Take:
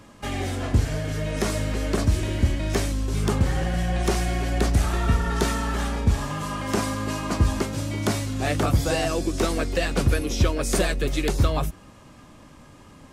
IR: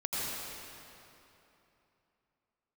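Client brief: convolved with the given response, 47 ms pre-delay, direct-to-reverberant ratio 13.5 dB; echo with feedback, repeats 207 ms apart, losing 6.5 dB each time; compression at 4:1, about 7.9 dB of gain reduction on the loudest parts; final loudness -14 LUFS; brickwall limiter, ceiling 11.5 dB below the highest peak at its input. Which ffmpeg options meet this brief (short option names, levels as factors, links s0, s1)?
-filter_complex "[0:a]acompressor=threshold=0.0631:ratio=4,alimiter=limit=0.0668:level=0:latency=1,aecho=1:1:207|414|621|828|1035|1242:0.473|0.222|0.105|0.0491|0.0231|0.0109,asplit=2[s0][s1];[1:a]atrim=start_sample=2205,adelay=47[s2];[s1][s2]afir=irnorm=-1:irlink=0,volume=0.1[s3];[s0][s3]amix=inputs=2:normalize=0,volume=7.5"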